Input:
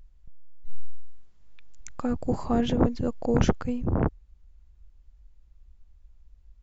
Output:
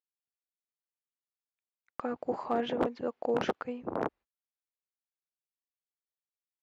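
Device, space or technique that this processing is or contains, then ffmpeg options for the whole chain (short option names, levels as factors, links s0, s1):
walkie-talkie: -af "highpass=440,lowpass=2700,asoftclip=type=hard:threshold=0.106,agate=range=0.0178:threshold=0.00282:ratio=16:detection=peak"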